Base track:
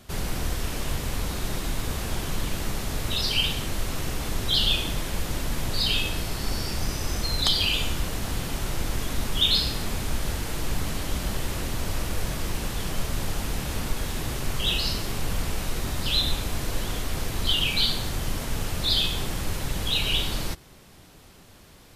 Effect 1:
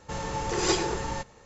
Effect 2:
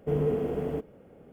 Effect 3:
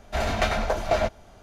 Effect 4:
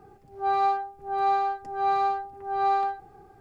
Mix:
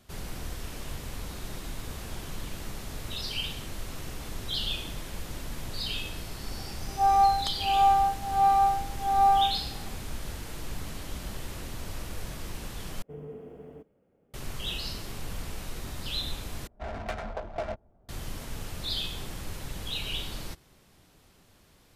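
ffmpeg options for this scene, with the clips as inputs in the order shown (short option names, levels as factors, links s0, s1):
-filter_complex "[0:a]volume=0.355[s0];[4:a]highpass=f=660:t=q:w=6.3[s1];[3:a]adynamicsmooth=sensitivity=2:basefreq=660[s2];[s0]asplit=3[s3][s4][s5];[s3]atrim=end=13.024[s6];[2:a]atrim=end=1.32,asetpts=PTS-STARTPTS,volume=0.168[s7];[s4]atrim=start=14.336:end=16.674[s8];[s2]atrim=end=1.42,asetpts=PTS-STARTPTS,volume=0.299[s9];[s5]atrim=start=18.086[s10];[s1]atrim=end=3.4,asetpts=PTS-STARTPTS,volume=0.473,afade=t=in:d=0.004:c=hsin,afade=t=out:st=3.396:d=0.004:c=hsin,adelay=6570[s11];[s6][s7]acrossfade=d=0.004:c1=hsin:c2=hsin[s12];[s12][s8]acrossfade=d=0.004:c1=hsin:c2=hsin[s13];[s13][s9]acrossfade=d=0.004:c1=hsin:c2=hsin[s14];[s14][s10]acrossfade=d=0.004:c1=hsin:c2=hsin[s15];[s15][s11]amix=inputs=2:normalize=0"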